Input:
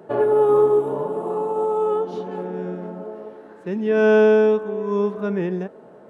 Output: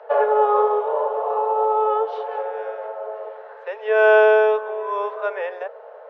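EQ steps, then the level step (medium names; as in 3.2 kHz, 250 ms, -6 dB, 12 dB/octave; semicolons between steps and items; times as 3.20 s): steep high-pass 460 Hz 96 dB/octave; distance through air 290 m; +8.5 dB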